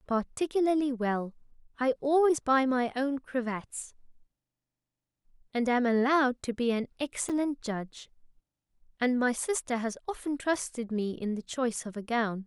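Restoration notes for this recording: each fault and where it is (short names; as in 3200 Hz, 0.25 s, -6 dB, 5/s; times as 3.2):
7.29–7.3 gap 6.2 ms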